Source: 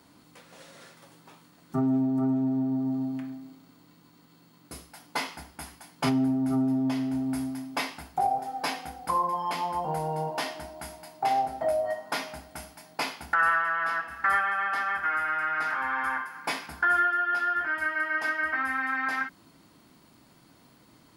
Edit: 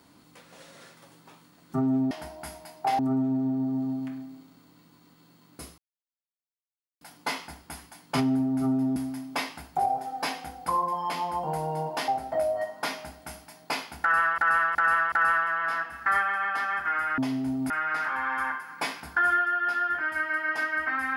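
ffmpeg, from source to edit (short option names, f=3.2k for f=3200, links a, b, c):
-filter_complex "[0:a]asplit=11[a][b][c][d][e][f][g][h][i][j][k];[a]atrim=end=2.112[l];[b]atrim=start=10.488:end=11.372[m];[c]atrim=start=2.108:end=4.9,asetpts=PTS-STARTPTS,afade=t=out:st=2.788:d=0.004:c=hsin,apad=pad_dur=1.23[n];[d]atrim=start=4.9:end=6.852,asetpts=PTS-STARTPTS,afade=t=in:d=0.004:c=hsin[o];[e]atrim=start=7.368:end=10.492[p];[f]atrim=start=11.368:end=13.672[q];[g]atrim=start=13.298:end=13.672[r];[h]atrim=start=13.298:end=13.672[s];[i]atrim=start=13.298:end=15.362[t];[j]atrim=start=6.848:end=7.372[u];[k]atrim=start=15.358[v];[l][m]acrossfade=d=0.004:c1=hsin:c2=hsin[w];[n][o]concat=n=2:v=0:a=1[x];[w][x]acrossfade=d=0.004:c1=hsin:c2=hsin[y];[y][p]acrossfade=d=0.004:c1=hsin:c2=hsin[z];[z][q]acrossfade=d=0.004:c1=hsin:c2=hsin[aa];[aa][r]acrossfade=d=0.004:c1=hsin:c2=hsin[ab];[ab][s]acrossfade=d=0.004:c1=hsin:c2=hsin[ac];[ac][t]acrossfade=d=0.004:c1=hsin:c2=hsin[ad];[ad][u]acrossfade=d=0.004:c1=hsin:c2=hsin[ae];[ae][v]acrossfade=d=0.004:c1=hsin:c2=hsin"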